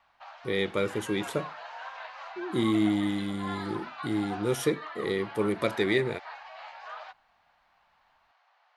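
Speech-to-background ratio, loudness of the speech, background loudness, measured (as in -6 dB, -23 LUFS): 12.0 dB, -29.5 LUFS, -41.5 LUFS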